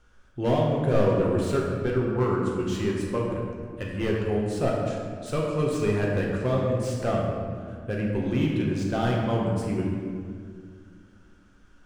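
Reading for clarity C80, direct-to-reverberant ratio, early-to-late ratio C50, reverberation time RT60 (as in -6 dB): 2.0 dB, -3.0 dB, 0.5 dB, 2.1 s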